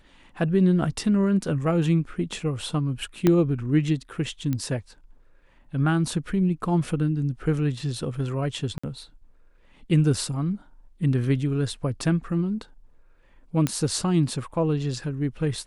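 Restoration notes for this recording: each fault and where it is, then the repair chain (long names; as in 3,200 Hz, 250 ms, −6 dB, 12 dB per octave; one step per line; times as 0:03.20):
0:03.27: click −7 dBFS
0:04.53: click −15 dBFS
0:08.78–0:08.84: drop-out 55 ms
0:13.67: click −10 dBFS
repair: click removal
repair the gap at 0:08.78, 55 ms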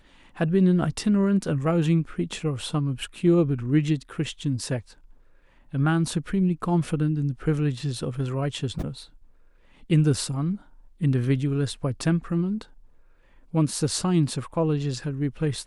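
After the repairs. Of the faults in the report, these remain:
0:03.27: click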